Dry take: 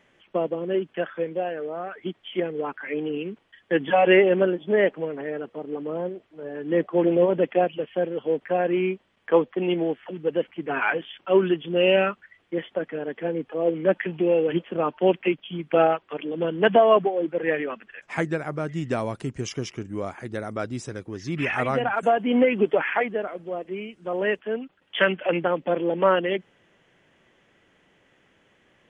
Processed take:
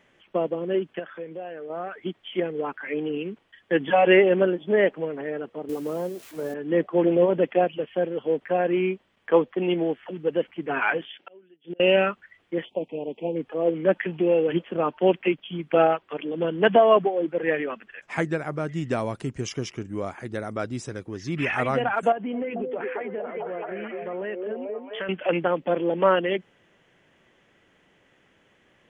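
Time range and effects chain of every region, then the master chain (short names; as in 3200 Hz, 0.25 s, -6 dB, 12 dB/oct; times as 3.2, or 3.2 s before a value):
0.99–1.7 HPF 63 Hz + compressor 2:1, threshold -38 dBFS
5.69–6.54 switching spikes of -36 dBFS + three-band squash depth 100%
11.06–11.8 flipped gate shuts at -23 dBFS, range -32 dB + BPF 230–5700 Hz + bell 1100 Hz -15 dB 0.38 oct
12.65–13.36 elliptic band-stop 940–2500 Hz, stop band 60 dB + low shelf 61 Hz -9 dB
22.12–25.09 delay with a stepping band-pass 0.22 s, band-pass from 380 Hz, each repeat 0.7 oct, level -2 dB + compressor 4:1, threshold -27 dBFS + air absorption 290 m
whole clip: dry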